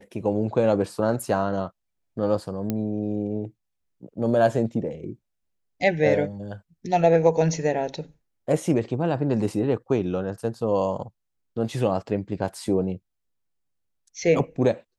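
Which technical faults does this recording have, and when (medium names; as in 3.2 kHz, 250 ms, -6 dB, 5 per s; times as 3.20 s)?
2.70 s: pop -13 dBFS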